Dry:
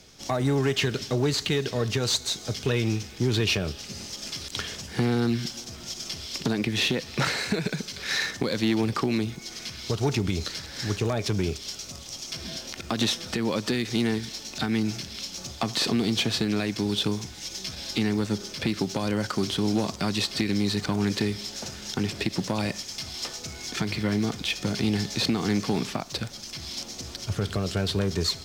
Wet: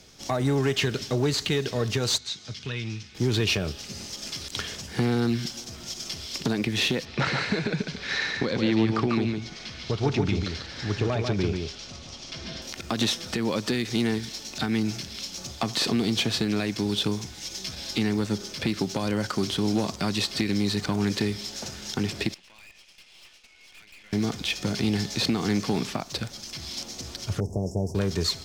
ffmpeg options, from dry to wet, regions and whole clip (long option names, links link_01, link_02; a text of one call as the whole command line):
ffmpeg -i in.wav -filter_complex "[0:a]asettb=1/sr,asplit=3[link_01][link_02][link_03];[link_01]atrim=end=2.184[link_04];[link_02]atrim=start=2.18:end=3.15,asetpts=PTS-STARTPTS,afade=type=in:duration=0.004:curve=qsin,afade=type=out:start_time=0.966:duration=0.004:curve=qsin,highpass=110,lowpass=4400,equalizer=frequency=490:width_type=o:width=2.7:gain=-13.5,bandreject=frequency=750:width=24[link_05];[link_03]atrim=start=3.146[link_06];[link_04][link_05]acrossfade=duration=0.004:curve1=hsin:curve2=qsin[link_07];[link_07][link_06]acrossfade=duration=0.004:curve1=qsin:curve2=hsin,asettb=1/sr,asplit=3[link_08][link_09][link_10];[link_08]atrim=end=7.054[link_11];[link_09]atrim=start=7.05:end=12.62,asetpts=PTS-STARTPTS,afade=type=in:duration=0.004:curve=qsin,afade=type=out:start_time=5.566:duration=0.004:curve=qsin,lowpass=4100,aecho=1:1:144:0.596,atrim=end_sample=245637[link_12];[link_10]atrim=start=12.616[link_13];[link_11][link_12]acrossfade=duration=0.004:curve1=hsin:curve2=qsin[link_14];[link_14][link_13]acrossfade=duration=0.004:curve1=qsin:curve2=hsin,asettb=1/sr,asplit=3[link_15][link_16][link_17];[link_15]atrim=end=22.344[link_18];[link_16]atrim=start=22.34:end=24.13,asetpts=PTS-STARTPTS,afade=type=in:duration=0.004:curve=qsin,afade=type=out:start_time=1.786:duration=0.004:curve=qsin,bandpass=frequency=2600:width_type=q:width=3.8,aeval=exprs='(tanh(224*val(0)+0.75)-tanh(0.75))/224':channel_layout=same[link_19];[link_17]atrim=start=24.126[link_20];[link_18][link_19]acrossfade=duration=0.004:curve1=hsin:curve2=qsin[link_21];[link_21][link_20]acrossfade=duration=0.004:curve1=qsin:curve2=hsin,asettb=1/sr,asplit=3[link_22][link_23][link_24];[link_22]atrim=end=27.404[link_25];[link_23]atrim=start=27.4:end=27.95,asetpts=PTS-STARTPTS,afade=type=in:duration=0.004:curve=qsin,afade=type=out:start_time=0.546:duration=0.004:curve=qsin,asuperstop=centerf=2300:order=20:qfactor=0.51,highshelf=frequency=4600:gain=-10[link_26];[link_24]atrim=start=27.946[link_27];[link_25][link_26]acrossfade=duration=0.004:curve1=hsin:curve2=qsin[link_28];[link_28][link_27]acrossfade=duration=0.004:curve1=qsin:curve2=hsin" out.wav